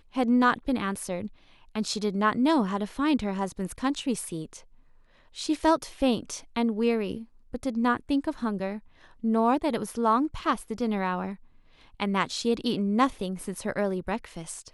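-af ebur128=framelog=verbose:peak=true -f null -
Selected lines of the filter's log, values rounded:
Integrated loudness:
  I:         -27.7 LUFS
  Threshold: -38.3 LUFS
Loudness range:
  LRA:         2.0 LU
  Threshold: -48.4 LUFS
  LRA low:   -29.5 LUFS
  LRA high:  -27.4 LUFS
True peak:
  Peak:       -9.2 dBFS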